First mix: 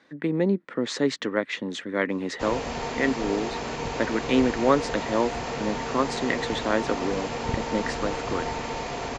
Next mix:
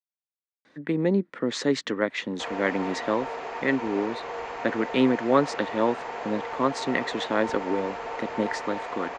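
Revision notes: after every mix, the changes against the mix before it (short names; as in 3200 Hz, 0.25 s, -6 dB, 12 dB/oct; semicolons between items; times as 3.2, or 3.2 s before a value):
speech: entry +0.65 s; background: add three-band isolator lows -20 dB, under 430 Hz, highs -15 dB, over 2500 Hz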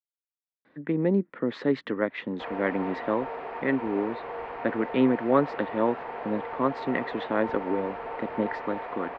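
master: add air absorption 420 m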